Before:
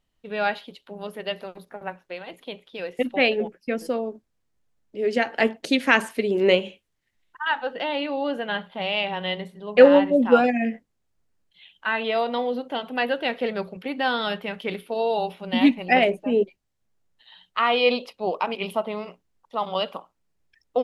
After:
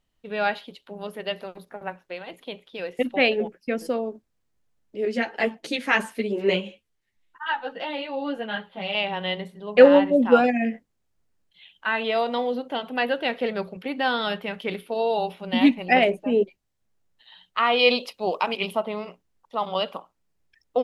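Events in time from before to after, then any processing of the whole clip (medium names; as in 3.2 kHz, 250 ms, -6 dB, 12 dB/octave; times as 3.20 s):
5.05–8.95 s: three-phase chorus
11.93–12.55 s: peaking EQ 7.4 kHz +5.5 dB
17.79–18.66 s: treble shelf 2.9 kHz +8.5 dB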